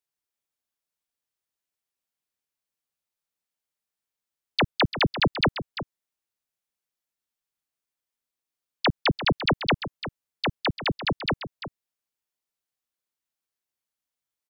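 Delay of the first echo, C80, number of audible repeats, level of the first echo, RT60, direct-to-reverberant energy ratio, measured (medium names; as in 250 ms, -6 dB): 344 ms, no reverb, 1, -11.5 dB, no reverb, no reverb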